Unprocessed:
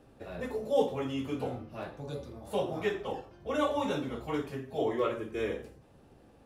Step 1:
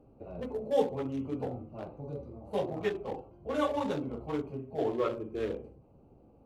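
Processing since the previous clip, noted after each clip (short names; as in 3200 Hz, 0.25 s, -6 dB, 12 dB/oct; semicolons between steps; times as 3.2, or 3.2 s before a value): Wiener smoothing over 25 samples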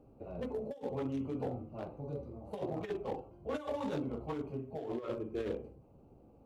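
negative-ratio compressor -33 dBFS, ratio -0.5; gain -3 dB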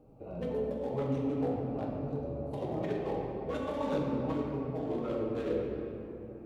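reverb RT60 3.3 s, pre-delay 6 ms, DRR -2 dB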